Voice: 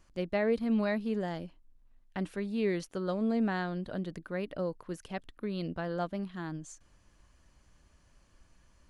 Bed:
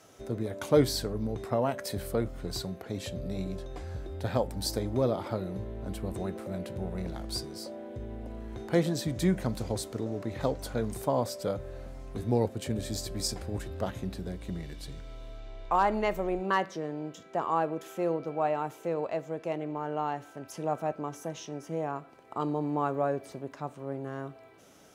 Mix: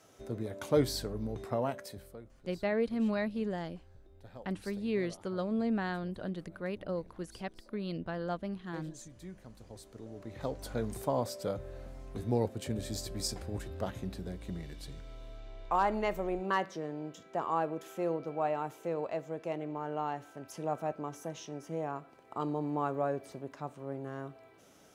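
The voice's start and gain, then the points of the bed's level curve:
2.30 s, -2.0 dB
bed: 1.7 s -4.5 dB
2.22 s -21 dB
9.48 s -21 dB
10.74 s -3.5 dB

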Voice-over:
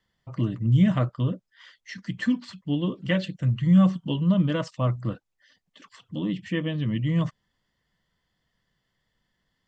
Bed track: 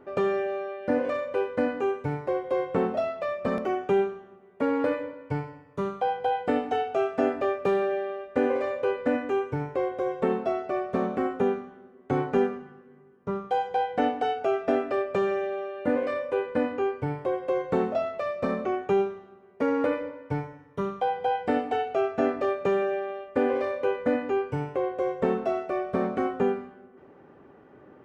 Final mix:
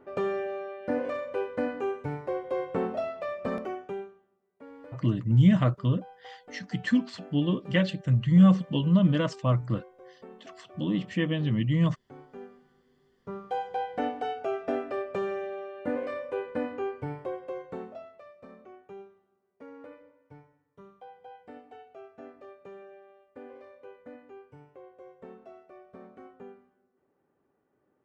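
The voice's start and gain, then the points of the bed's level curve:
4.65 s, 0.0 dB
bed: 3.56 s -4 dB
4.34 s -22.5 dB
12.3 s -22.5 dB
13.5 s -5.5 dB
17.18 s -5.5 dB
18.38 s -22 dB

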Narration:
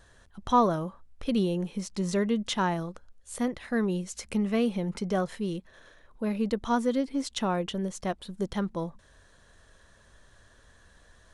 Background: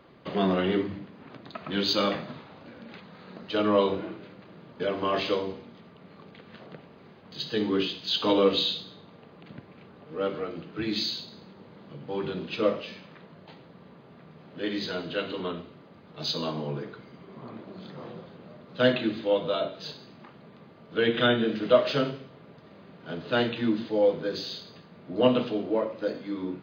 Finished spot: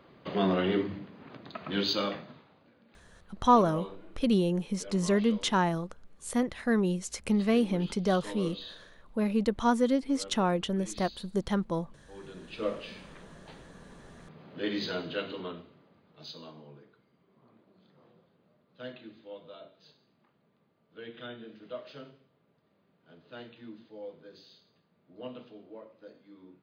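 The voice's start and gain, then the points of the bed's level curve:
2.95 s, +1.0 dB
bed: 1.8 s -2 dB
2.79 s -17.5 dB
12.1 s -17.5 dB
13 s -1.5 dB
14.96 s -1.5 dB
16.87 s -20.5 dB

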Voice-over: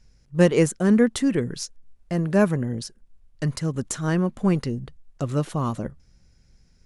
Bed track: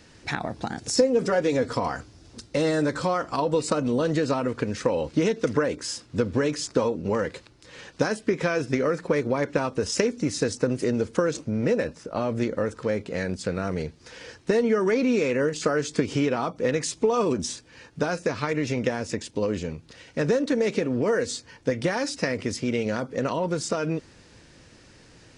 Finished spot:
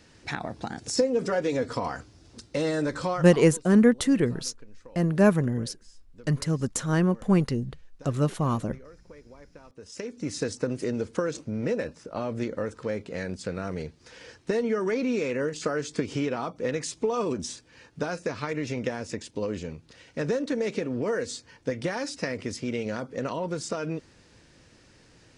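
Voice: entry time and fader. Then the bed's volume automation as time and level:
2.85 s, -0.5 dB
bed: 3.13 s -3.5 dB
3.67 s -25.5 dB
9.62 s -25.5 dB
10.31 s -4.5 dB

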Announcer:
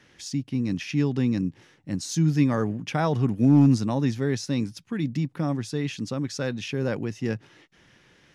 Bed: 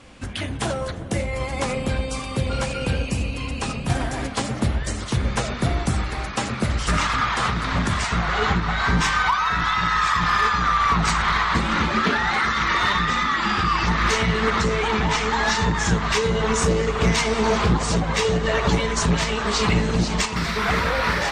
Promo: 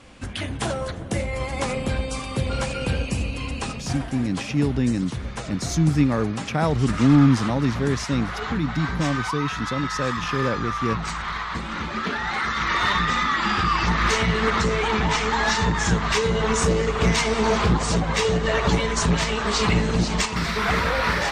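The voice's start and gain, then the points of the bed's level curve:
3.60 s, +2.0 dB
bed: 3.56 s -1 dB
4.07 s -8.5 dB
11.75 s -8.5 dB
12.93 s -0.5 dB

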